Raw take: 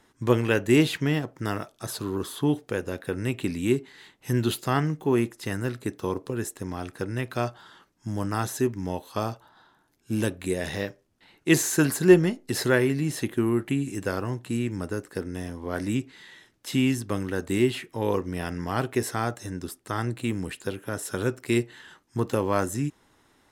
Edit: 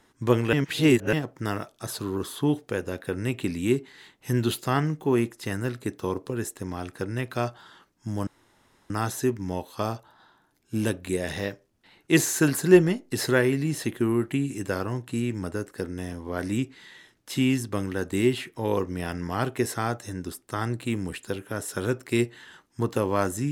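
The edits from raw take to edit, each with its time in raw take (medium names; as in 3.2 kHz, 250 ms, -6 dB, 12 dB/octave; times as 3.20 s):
0.53–1.13 s: reverse
8.27 s: insert room tone 0.63 s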